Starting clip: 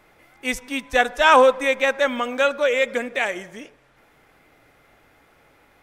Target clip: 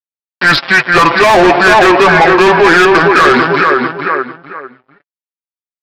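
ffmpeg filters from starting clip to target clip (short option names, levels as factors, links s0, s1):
-filter_complex "[0:a]aresample=16000,aeval=exprs='sgn(val(0))*max(abs(val(0))-0.00944,0)':c=same,aresample=44100,asetrate=30296,aresample=44100,atempo=1.45565,flanger=delay=6.8:depth=1.3:regen=20:speed=1.9:shape=triangular,asplit=2[s0][s1];[s1]adelay=447,lowpass=f=2700:p=1,volume=0.316,asplit=2[s2][s3];[s3]adelay=447,lowpass=f=2700:p=1,volume=0.26,asplit=2[s4][s5];[s5]adelay=447,lowpass=f=2700:p=1,volume=0.26[s6];[s0][s2][s4][s6]amix=inputs=4:normalize=0,asplit=2[s7][s8];[s8]highpass=f=720:p=1,volume=28.2,asoftclip=type=tanh:threshold=0.531[s9];[s7][s9]amix=inputs=2:normalize=0,lowpass=f=3900:p=1,volume=0.501,alimiter=level_in=7.94:limit=0.891:release=50:level=0:latency=1,volume=0.891"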